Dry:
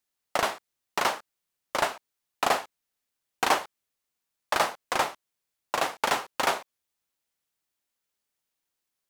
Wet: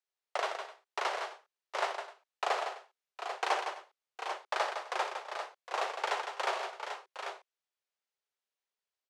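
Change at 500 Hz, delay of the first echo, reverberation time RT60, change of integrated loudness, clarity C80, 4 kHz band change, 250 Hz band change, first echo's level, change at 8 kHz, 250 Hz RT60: −5.5 dB, 59 ms, no reverb audible, −8.0 dB, no reverb audible, −7.5 dB, −15.0 dB, −11.0 dB, −12.0 dB, no reverb audible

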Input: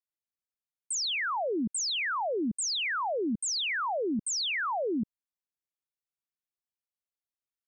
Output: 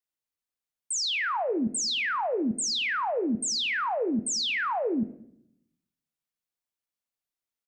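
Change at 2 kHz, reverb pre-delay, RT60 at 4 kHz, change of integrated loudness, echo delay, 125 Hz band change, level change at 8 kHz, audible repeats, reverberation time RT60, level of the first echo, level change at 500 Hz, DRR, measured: +2.5 dB, 4 ms, 0.50 s, +2.5 dB, 75 ms, +2.5 dB, +2.0 dB, 1, 0.70 s, −20.5 dB, +2.5 dB, 10.5 dB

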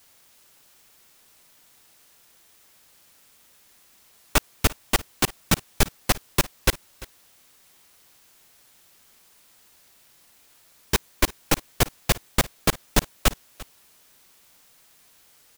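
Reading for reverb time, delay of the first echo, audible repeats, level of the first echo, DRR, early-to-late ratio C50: no reverb audible, 344 ms, 1, −20.0 dB, no reverb audible, no reverb audible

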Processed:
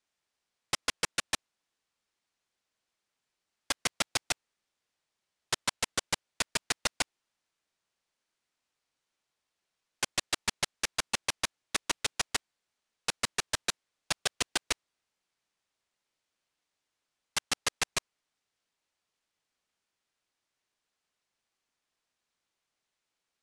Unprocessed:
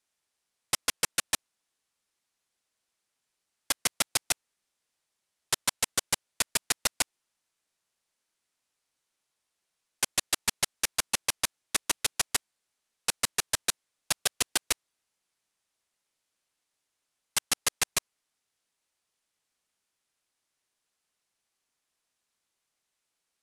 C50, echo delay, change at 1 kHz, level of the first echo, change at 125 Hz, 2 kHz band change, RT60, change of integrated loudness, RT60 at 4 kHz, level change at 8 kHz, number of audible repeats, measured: no reverb audible, no echo audible, −0.5 dB, no echo audible, 0.0 dB, −0.5 dB, no reverb audible, −3.5 dB, no reverb audible, −5.5 dB, no echo audible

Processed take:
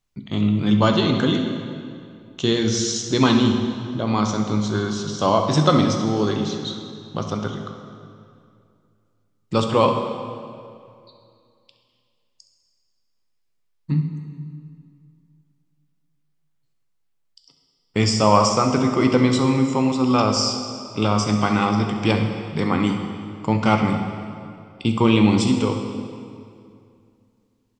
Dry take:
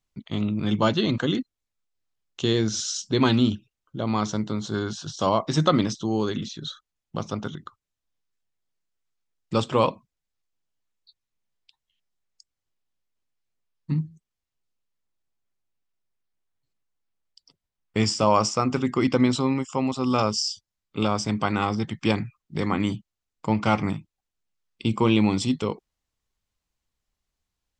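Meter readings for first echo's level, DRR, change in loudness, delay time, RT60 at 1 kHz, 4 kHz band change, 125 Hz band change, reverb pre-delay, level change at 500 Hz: −13.5 dB, 4.0 dB, +4.5 dB, 67 ms, 2.3 s, +4.5 dB, +5.5 dB, 11 ms, +4.5 dB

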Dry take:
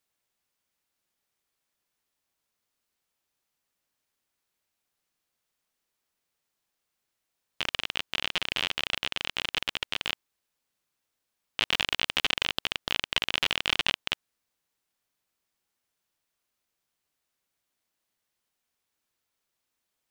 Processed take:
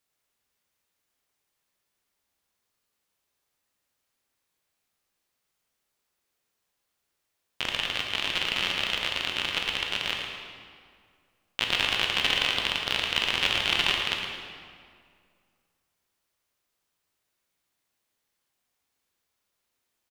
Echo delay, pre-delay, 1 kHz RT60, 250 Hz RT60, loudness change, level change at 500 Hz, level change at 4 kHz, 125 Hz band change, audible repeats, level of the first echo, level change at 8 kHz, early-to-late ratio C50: 112 ms, 12 ms, 2.1 s, 2.3 s, +2.5 dB, +3.5 dB, +3.0 dB, +3.5 dB, 1, −8.0 dB, +2.5 dB, 1.5 dB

